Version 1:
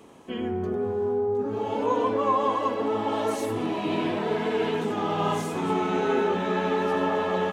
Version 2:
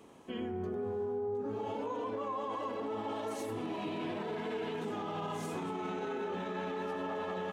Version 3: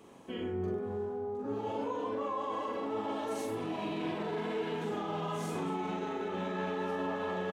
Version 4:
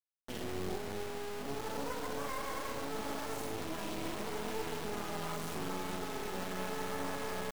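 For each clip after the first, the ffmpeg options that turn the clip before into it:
-af "alimiter=limit=-23.5dB:level=0:latency=1:release=67,volume=-6dB"
-filter_complex "[0:a]asplit=2[a][b];[b]adelay=43,volume=-3dB[c];[a][c]amix=inputs=2:normalize=0"
-af "acrusher=bits=4:dc=4:mix=0:aa=0.000001"

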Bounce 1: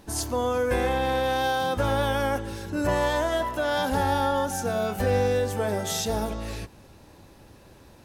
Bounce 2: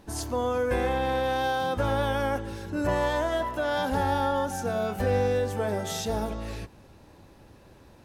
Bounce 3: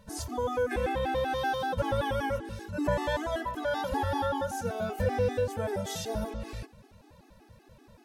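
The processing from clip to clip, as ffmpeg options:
-af "highshelf=f=3.9k:g=-5.5,volume=-1.5dB"
-af "afftfilt=real='re*gt(sin(2*PI*5.2*pts/sr)*(1-2*mod(floor(b*sr/1024/220),2)),0)':imag='im*gt(sin(2*PI*5.2*pts/sr)*(1-2*mod(floor(b*sr/1024/220),2)),0)':win_size=1024:overlap=0.75"

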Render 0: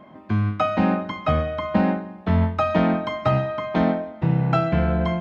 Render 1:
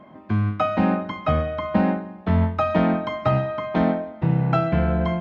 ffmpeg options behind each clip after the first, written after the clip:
-af "highshelf=f=4.4k:g=-6.5"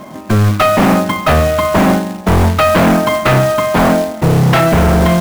-af "aeval=exprs='0.501*sin(PI/2*3.55*val(0)/0.501)':c=same,acrusher=bits=3:mode=log:mix=0:aa=0.000001"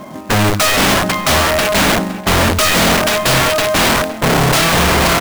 -filter_complex "[0:a]aeval=exprs='(mod(2.66*val(0)+1,2)-1)/2.66':c=same,asplit=2[a][b];[b]adelay=513.1,volume=-14dB,highshelf=f=4k:g=-11.5[c];[a][c]amix=inputs=2:normalize=0"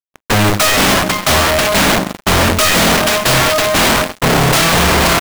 -af "acrusher=bits=2:mix=0:aa=0.5"

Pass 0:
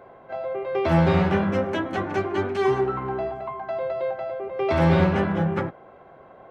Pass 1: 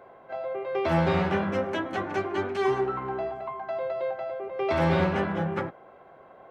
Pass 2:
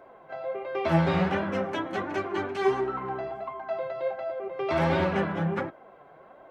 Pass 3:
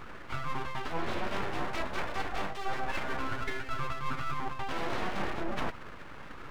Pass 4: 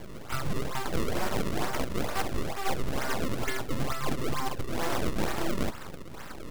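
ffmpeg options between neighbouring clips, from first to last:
-af "lowshelf=f=240:g=-6.5,volume=-2dB"
-af "flanger=delay=3.1:depth=3.9:regen=40:speed=1.4:shape=sinusoidal,volume=3.5dB"
-af "areverse,acompressor=threshold=-36dB:ratio=10,areverse,aeval=exprs='abs(val(0))':c=same,volume=8.5dB"
-af "acrusher=samples=32:mix=1:aa=0.000001:lfo=1:lforange=51.2:lforate=2.2,volume=4dB"

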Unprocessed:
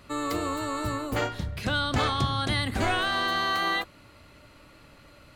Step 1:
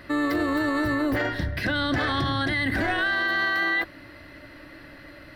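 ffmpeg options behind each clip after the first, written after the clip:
-af "superequalizer=6b=2.51:8b=1.58:11b=3.55:15b=0.282:16b=0.562,alimiter=limit=-21dB:level=0:latency=1:release=23,volume=4dB"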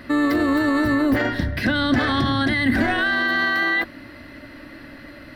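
-af "equalizer=f=240:t=o:w=0.26:g=12.5,volume=3.5dB"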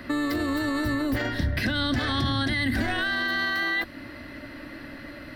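-filter_complex "[0:a]acrossover=split=120|3000[a][b][c];[b]acompressor=threshold=-28dB:ratio=3[d];[a][d][c]amix=inputs=3:normalize=0"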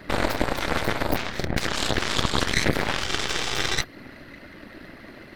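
-af "afftfilt=real='hypot(re,im)*cos(2*PI*random(0))':imag='hypot(re,im)*sin(2*PI*random(1))':win_size=512:overlap=0.75,aeval=exprs='0.133*(cos(1*acos(clip(val(0)/0.133,-1,1)))-cos(1*PI/2))+0.0133*(cos(3*acos(clip(val(0)/0.133,-1,1)))-cos(3*PI/2))+0.0473*(cos(4*acos(clip(val(0)/0.133,-1,1)))-cos(4*PI/2))+0.0237*(cos(7*acos(clip(val(0)/0.133,-1,1)))-cos(7*PI/2))':c=same,volume=8.5dB"

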